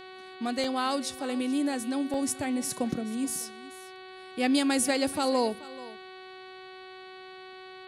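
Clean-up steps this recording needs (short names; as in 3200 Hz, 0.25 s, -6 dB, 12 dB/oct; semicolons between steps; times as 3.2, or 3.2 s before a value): de-hum 374.5 Hz, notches 12; interpolate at 0.64/2.14, 2.1 ms; inverse comb 0.431 s -18.5 dB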